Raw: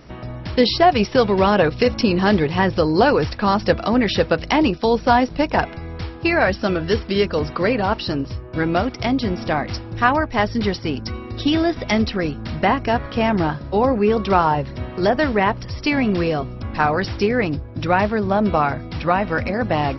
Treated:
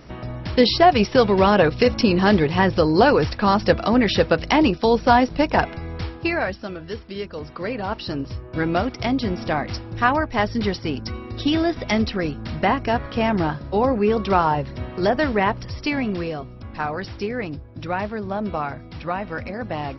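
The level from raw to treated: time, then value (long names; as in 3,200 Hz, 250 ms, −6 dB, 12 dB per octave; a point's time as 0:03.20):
0:06.08 0 dB
0:06.70 −12 dB
0:07.32 −12 dB
0:08.39 −2 dB
0:15.67 −2 dB
0:16.38 −8 dB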